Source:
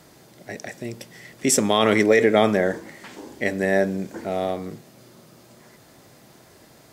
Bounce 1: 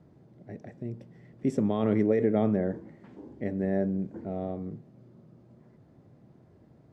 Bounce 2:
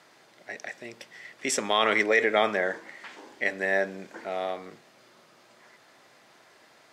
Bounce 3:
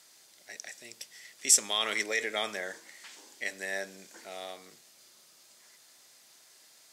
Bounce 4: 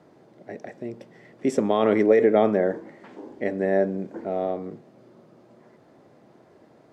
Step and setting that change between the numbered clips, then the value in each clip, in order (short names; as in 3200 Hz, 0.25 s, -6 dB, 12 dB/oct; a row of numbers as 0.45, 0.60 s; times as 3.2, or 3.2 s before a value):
band-pass, frequency: 110, 1800, 6800, 410 Hz